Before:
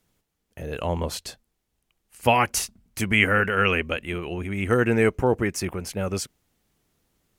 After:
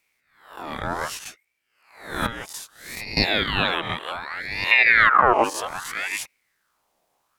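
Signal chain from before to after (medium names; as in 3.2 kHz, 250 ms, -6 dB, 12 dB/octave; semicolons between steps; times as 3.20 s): reverse spectral sustain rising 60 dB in 0.60 s; 2.26–3.17 s: compression 4:1, threshold -30 dBFS, peak gain reduction 15 dB; 4.71–5.44 s: RIAA curve playback; de-esser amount 35%; ring modulator with a swept carrier 1.5 kHz, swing 55%, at 0.64 Hz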